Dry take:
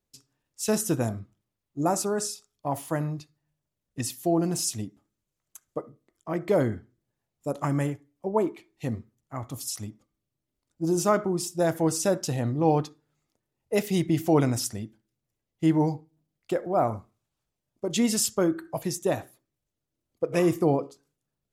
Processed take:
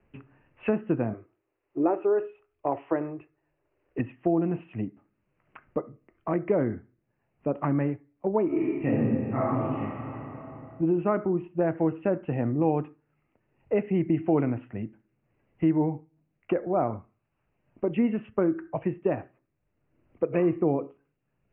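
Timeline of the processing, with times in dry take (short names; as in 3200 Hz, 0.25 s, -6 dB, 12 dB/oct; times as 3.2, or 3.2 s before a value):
1.13–3.99 resonant low shelf 270 Hz -10 dB, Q 3
8.46–9.8 reverb throw, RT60 1.8 s, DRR -10 dB
whole clip: steep low-pass 2800 Hz 96 dB/oct; dynamic EQ 310 Hz, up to +5 dB, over -33 dBFS, Q 0.87; three-band squash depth 70%; gain -3.5 dB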